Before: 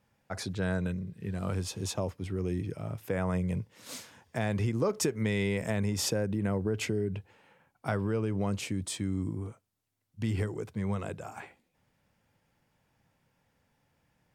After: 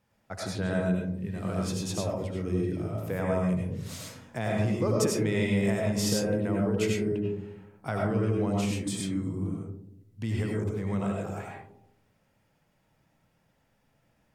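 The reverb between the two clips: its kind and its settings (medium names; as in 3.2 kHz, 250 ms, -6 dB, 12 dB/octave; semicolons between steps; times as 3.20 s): algorithmic reverb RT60 0.74 s, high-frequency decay 0.25×, pre-delay 55 ms, DRR -2 dB; trim -1.5 dB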